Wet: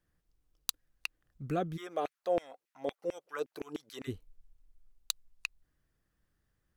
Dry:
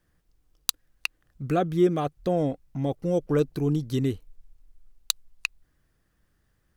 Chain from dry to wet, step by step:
0:01.76–0:04.07: auto-filter high-pass saw down 2.4 Hz → 8.6 Hz 360–2,500 Hz
level −8.5 dB

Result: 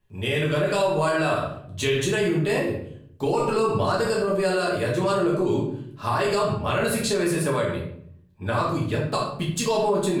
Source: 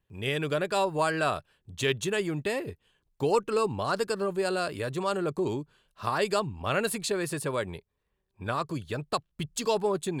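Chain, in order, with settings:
rectangular room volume 110 cubic metres, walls mixed, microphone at 1.4 metres
brickwall limiter −15.5 dBFS, peak gain reduction 9 dB
level +1.5 dB

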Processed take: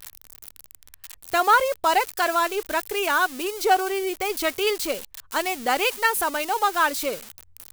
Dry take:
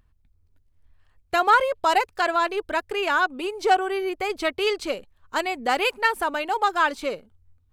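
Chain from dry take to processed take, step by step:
spike at every zero crossing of −22.5 dBFS

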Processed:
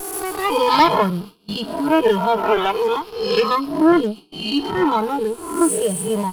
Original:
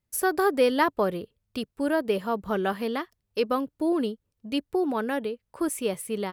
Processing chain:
peak hold with a rise ahead of every peak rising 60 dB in 1.23 s
0:02.37–0:02.96: low shelf with overshoot 250 Hz −9 dB, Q 3
on a send: delay with a high-pass on its return 126 ms, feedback 62%, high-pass 2,400 Hz, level −6.5 dB
on the sum: sine wavefolder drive 4 dB, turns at −5 dBFS
noise gate with hold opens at −15 dBFS
phaser with its sweep stopped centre 370 Hz, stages 8
in parallel at +2 dB: brickwall limiter −13.5 dBFS, peak gain reduction 7.5 dB
on the sum: harmonic generator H 2 −8 dB, 8 −17 dB, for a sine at −2 dBFS
noise reduction from a noise print of the clip's start 13 dB
level −2 dB

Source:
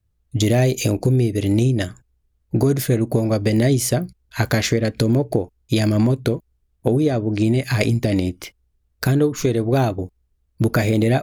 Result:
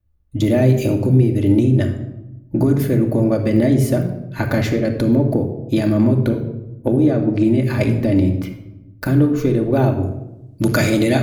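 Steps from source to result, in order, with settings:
parametric band 6,500 Hz −12 dB 2.4 octaves, from 0:10.03 +5.5 dB
rectangular room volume 3,300 cubic metres, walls furnished, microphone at 2.5 metres

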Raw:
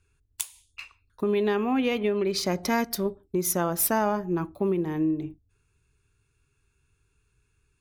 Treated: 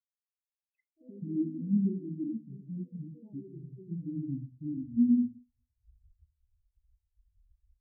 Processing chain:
camcorder AGC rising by 35 dB per second
on a send: delay that swaps between a low-pass and a high-pass 120 ms, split 1,100 Hz, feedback 59%, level −4 dB
on the sum: pitch shifter −4.5 semitones
low-shelf EQ 150 Hz +6 dB
soft clipping −13.5 dBFS, distortion −20 dB
delay with pitch and tempo change per echo 119 ms, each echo +4 semitones, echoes 3
treble cut that deepens with the level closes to 400 Hz, closed at −18 dBFS
leveller curve on the samples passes 1
every bin expanded away from the loudest bin 4 to 1
level −6.5 dB

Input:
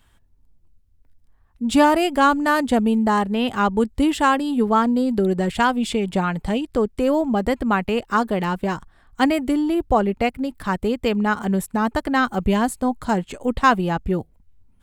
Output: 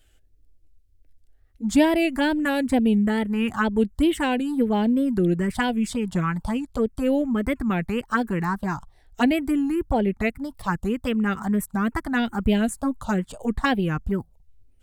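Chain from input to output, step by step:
tape wow and flutter 140 cents
phaser swept by the level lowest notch 170 Hz, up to 1,200 Hz, full sweep at −14 dBFS

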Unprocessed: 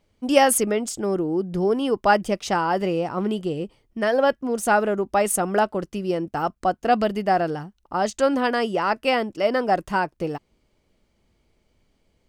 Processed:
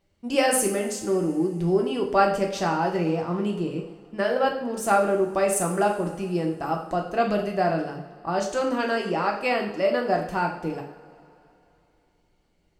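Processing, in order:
coupled-rooms reverb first 0.53 s, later 2.9 s, from −20 dB, DRR 0.5 dB
wrong playback speed 25 fps video run at 24 fps
level −5 dB

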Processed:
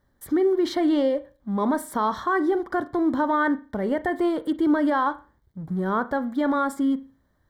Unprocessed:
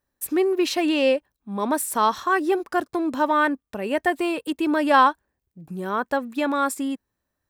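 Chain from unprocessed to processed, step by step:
mu-law and A-law mismatch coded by mu
bass and treble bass +6 dB, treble −13 dB
brickwall limiter −15 dBFS, peak gain reduction 9 dB
Butterworth band-reject 2,600 Hz, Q 2.8
convolution reverb, pre-delay 37 ms, DRR 14 dB

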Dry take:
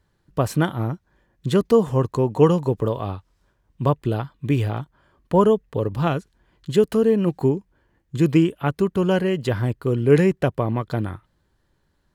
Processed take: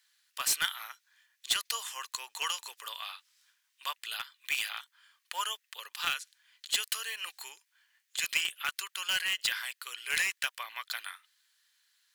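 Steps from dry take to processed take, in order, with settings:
Bessel high-pass filter 2,800 Hz, order 4
in parallel at −8 dB: wrap-around overflow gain 31 dB
on the sum: level +7.5 dB

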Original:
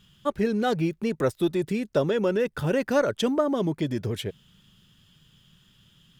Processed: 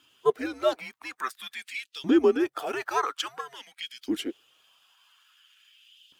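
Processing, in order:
spectral magnitudes quantised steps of 15 dB
frequency shifter −140 Hz
auto-filter high-pass saw up 0.49 Hz 290–3,600 Hz
AAC 128 kbit/s 44,100 Hz

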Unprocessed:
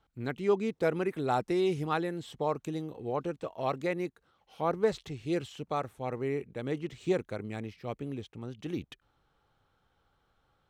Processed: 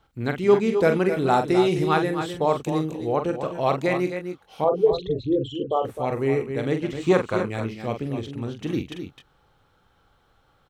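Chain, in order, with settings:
0:04.64–0:05.85: spectral envelope exaggerated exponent 3
0:07.02–0:07.44: parametric band 1,100 Hz +13.5 dB 0.8 octaves
on a send: multi-tap delay 44/259/281 ms −7.5/−9.5/−14.5 dB
on the sum: level +8.5 dB

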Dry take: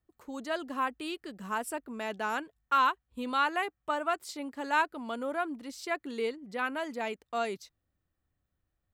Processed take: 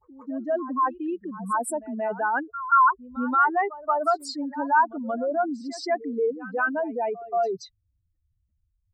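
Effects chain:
expanding power law on the bin magnitudes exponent 3.1
backwards echo 178 ms −16.5 dB
level +8.5 dB

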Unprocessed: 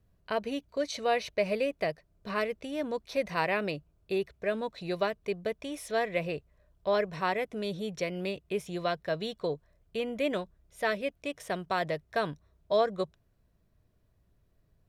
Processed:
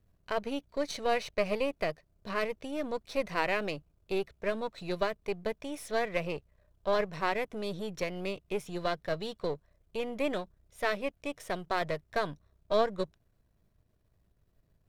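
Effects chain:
gain on one half-wave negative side −7 dB
level +1 dB

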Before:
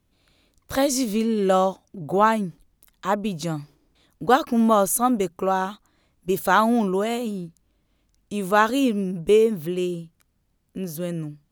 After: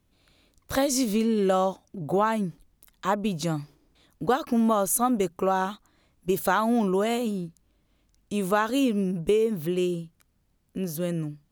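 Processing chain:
downward compressor 6 to 1, threshold −19 dBFS, peak gain reduction 9 dB

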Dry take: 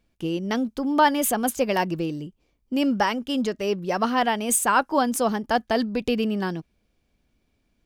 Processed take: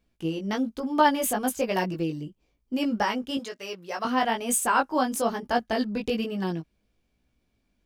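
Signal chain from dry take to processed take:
0:03.37–0:04.05: high-pass filter 1,000 Hz 6 dB per octave
chorus effect 1.1 Hz, delay 16 ms, depth 3.8 ms

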